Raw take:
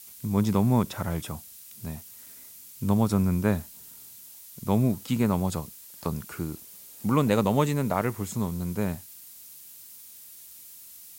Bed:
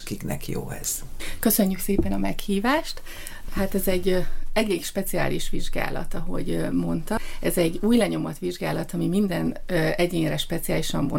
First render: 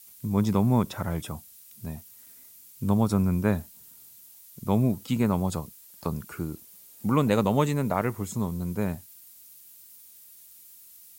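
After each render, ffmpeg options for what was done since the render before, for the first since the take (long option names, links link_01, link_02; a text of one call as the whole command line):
ffmpeg -i in.wav -af "afftdn=noise_reduction=6:noise_floor=-48" out.wav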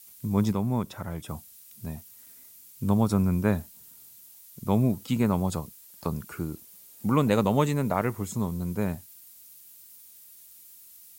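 ffmpeg -i in.wav -filter_complex "[0:a]asplit=3[link_01][link_02][link_03];[link_01]atrim=end=0.522[link_04];[link_02]atrim=start=0.518:end=1.292,asetpts=PTS-STARTPTS,volume=-5dB[link_05];[link_03]atrim=start=1.288[link_06];[link_04][link_05]acrossfade=duration=0.004:curve1=hsin:curve2=hsin[link_07];[link_07][link_06]acrossfade=duration=0.004:curve1=hsin:curve2=hsin" out.wav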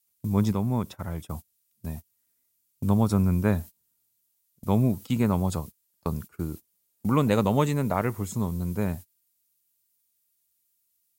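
ffmpeg -i in.wav -af "agate=range=-22dB:threshold=-38dB:ratio=16:detection=peak,equalizer=frequency=78:width=1.6:gain=4.5" out.wav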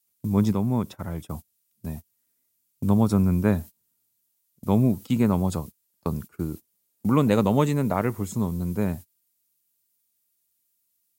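ffmpeg -i in.wav -af "highpass=63,equalizer=frequency=270:width=0.72:gain=3.5" out.wav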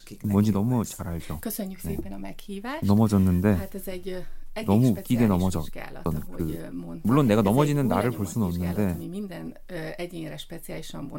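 ffmpeg -i in.wav -i bed.wav -filter_complex "[1:a]volume=-11.5dB[link_01];[0:a][link_01]amix=inputs=2:normalize=0" out.wav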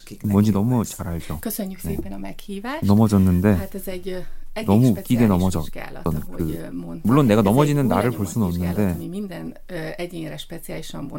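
ffmpeg -i in.wav -af "volume=4.5dB" out.wav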